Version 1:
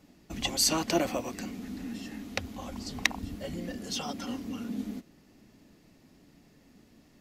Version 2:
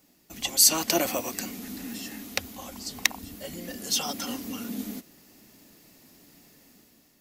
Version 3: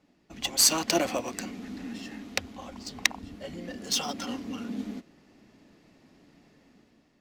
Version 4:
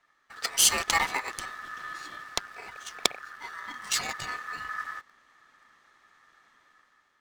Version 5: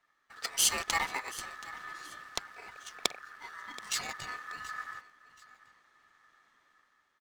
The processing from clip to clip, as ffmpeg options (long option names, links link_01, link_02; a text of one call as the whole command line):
ffmpeg -i in.wav -af "lowshelf=frequency=110:gain=7,dynaudnorm=framelen=280:gausssize=5:maxgain=8dB,aemphasis=mode=production:type=bsi,volume=-4dB" out.wav
ffmpeg -i in.wav -af "adynamicsmooth=sensitivity=4.5:basefreq=3300" out.wav
ffmpeg -i in.wav -filter_complex "[0:a]asplit=2[link_01][link_02];[link_02]acrusher=bits=5:dc=4:mix=0:aa=0.000001,volume=-8dB[link_03];[link_01][link_03]amix=inputs=2:normalize=0,aeval=exprs='val(0)*sin(2*PI*1500*n/s)':channel_layout=same" out.wav
ffmpeg -i in.wav -af "aecho=1:1:728|1456:0.119|0.0345,volume=-5.5dB" out.wav